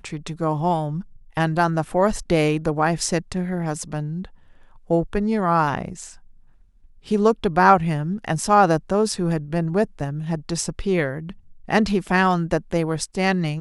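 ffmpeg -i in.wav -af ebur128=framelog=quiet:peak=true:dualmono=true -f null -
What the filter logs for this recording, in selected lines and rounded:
Integrated loudness:
  I:         -18.6 LUFS
  Threshold: -29.3 LUFS
Loudness range:
  LRA:         5.0 LU
  Threshold: -39.3 LUFS
  LRA low:   -21.9 LUFS
  LRA high:  -16.9 LUFS
True peak:
  Peak:       -2.0 dBFS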